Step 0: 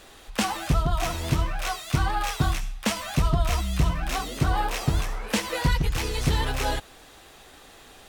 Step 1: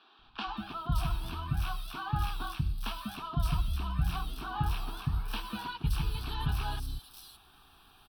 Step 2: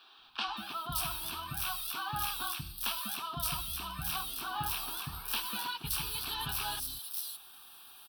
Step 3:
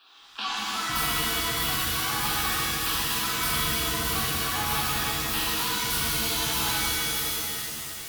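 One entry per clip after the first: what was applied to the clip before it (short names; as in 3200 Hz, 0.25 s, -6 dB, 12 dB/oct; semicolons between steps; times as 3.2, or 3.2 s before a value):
fixed phaser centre 2000 Hz, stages 6; three bands offset in time mids, lows, highs 0.19/0.57 s, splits 270/4500 Hz; gain -6.5 dB
RIAA curve recording
de-hum 45.94 Hz, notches 23; shimmer reverb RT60 3.1 s, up +7 st, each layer -2 dB, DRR -6.5 dB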